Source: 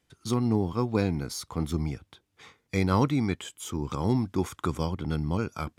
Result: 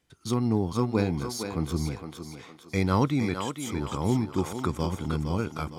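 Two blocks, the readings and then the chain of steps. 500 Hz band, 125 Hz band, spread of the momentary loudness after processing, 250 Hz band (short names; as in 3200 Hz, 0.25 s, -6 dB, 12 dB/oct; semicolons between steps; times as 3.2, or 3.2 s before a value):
+0.5 dB, 0.0 dB, 8 LU, +0.5 dB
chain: thinning echo 0.461 s, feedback 43%, high-pass 310 Hz, level -6 dB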